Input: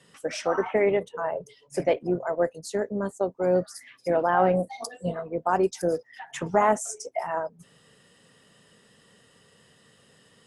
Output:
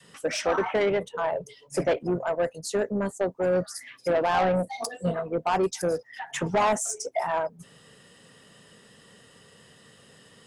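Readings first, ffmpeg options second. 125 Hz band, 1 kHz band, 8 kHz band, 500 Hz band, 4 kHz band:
+1.0 dB, -0.5 dB, +4.0 dB, -0.5 dB, +5.0 dB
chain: -af "adynamicequalizer=threshold=0.0158:dfrequency=350:dqfactor=0.9:tfrequency=350:tqfactor=0.9:attack=5:release=100:ratio=0.375:range=3.5:mode=cutabove:tftype=bell,asoftclip=type=tanh:threshold=-22.5dB,volume=4.5dB"

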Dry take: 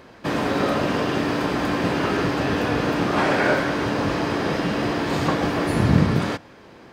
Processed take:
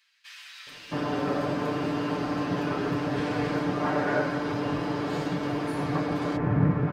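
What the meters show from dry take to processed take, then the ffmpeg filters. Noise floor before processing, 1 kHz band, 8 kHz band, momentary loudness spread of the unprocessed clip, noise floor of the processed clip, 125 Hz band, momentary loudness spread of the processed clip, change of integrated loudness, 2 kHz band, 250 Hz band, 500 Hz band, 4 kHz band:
-47 dBFS, -6.5 dB, -10.5 dB, 4 LU, -46 dBFS, -5.0 dB, 8 LU, -6.0 dB, -9.0 dB, -5.5 dB, -6.5 dB, -9.5 dB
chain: -filter_complex "[0:a]highshelf=f=4.8k:g=-6,aecho=1:1:6.8:0.71,acrossover=split=2200[a][b];[a]adelay=670[c];[c][b]amix=inputs=2:normalize=0,volume=-8dB"

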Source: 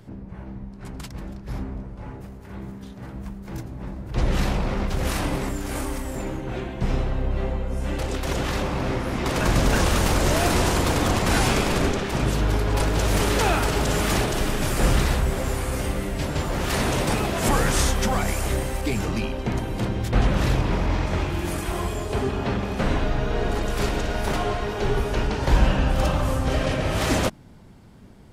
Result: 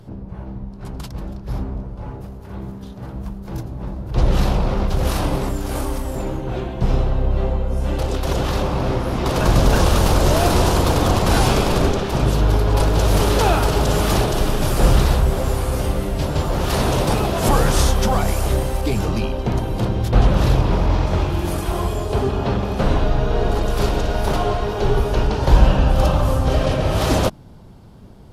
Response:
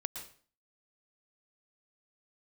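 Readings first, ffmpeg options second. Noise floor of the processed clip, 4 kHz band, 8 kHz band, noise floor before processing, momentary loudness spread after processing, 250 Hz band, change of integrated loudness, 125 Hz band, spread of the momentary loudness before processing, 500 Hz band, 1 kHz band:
-35 dBFS, +2.5 dB, +1.0 dB, -40 dBFS, 14 LU, +3.5 dB, +4.5 dB, +6.0 dB, 15 LU, +5.0 dB, +4.5 dB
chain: -filter_complex "[0:a]equalizer=f=250:t=o:w=1:g=-4,equalizer=f=2k:t=o:w=1:g=-9,equalizer=f=8k:t=o:w=1:g=-7[a];[1:a]atrim=start_sample=2205,atrim=end_sample=3087,asetrate=25137,aresample=44100[b];[a][b]afir=irnorm=-1:irlink=0,volume=5dB"

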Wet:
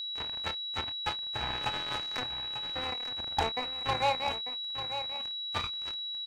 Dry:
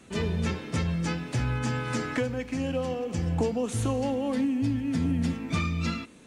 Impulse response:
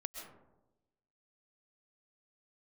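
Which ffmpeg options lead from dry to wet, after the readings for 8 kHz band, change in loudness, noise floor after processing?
-10.5 dB, -3.5 dB, -38 dBFS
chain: -filter_complex "[0:a]acrossover=split=110|2200[a][b][c];[b]highpass=f=810:t=q:w=4.2[d];[c]acompressor=threshold=-53dB:ratio=6[e];[a][d][e]amix=inputs=3:normalize=0,acrusher=bits=3:mix=0:aa=0.5,asplit=2[f][g];[g]adelay=27,volume=-12dB[h];[f][h]amix=inputs=2:normalize=0,aecho=1:1:894:0.299,aeval=exprs='val(0)+0.0251*sin(2*PI*3900*n/s)':c=same,volume=-2.5dB"

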